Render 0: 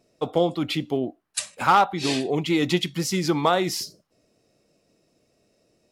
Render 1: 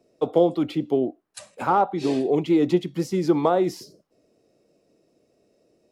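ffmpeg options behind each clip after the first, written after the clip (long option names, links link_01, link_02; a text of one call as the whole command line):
ffmpeg -i in.wav -filter_complex "[0:a]equalizer=frequency=400:width_type=o:width=2:gain=9.5,acrossover=split=120|1300[link_01][link_02][link_03];[link_03]acompressor=threshold=-34dB:ratio=6[link_04];[link_01][link_02][link_04]amix=inputs=3:normalize=0,volume=-5dB" out.wav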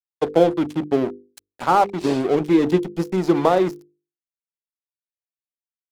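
ffmpeg -i in.wav -af "aeval=exprs='sgn(val(0))*max(abs(val(0))-0.0237,0)':channel_layout=same,bandreject=frequency=50:width_type=h:width=6,bandreject=frequency=100:width_type=h:width=6,bandreject=frequency=150:width_type=h:width=6,bandreject=frequency=200:width_type=h:width=6,bandreject=frequency=250:width_type=h:width=6,bandreject=frequency=300:width_type=h:width=6,bandreject=frequency=350:width_type=h:width=6,bandreject=frequency=400:width_type=h:width=6,bandreject=frequency=450:width_type=h:width=6,bandreject=frequency=500:width_type=h:width=6,volume=5dB" out.wav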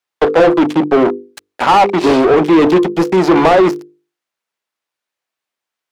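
ffmpeg -i in.wav -filter_complex "[0:a]asplit=2[link_01][link_02];[link_02]highpass=frequency=720:poles=1,volume=27dB,asoftclip=type=tanh:threshold=-2.5dB[link_03];[link_01][link_03]amix=inputs=2:normalize=0,lowpass=frequency=1900:poles=1,volume=-6dB,volume=1.5dB" out.wav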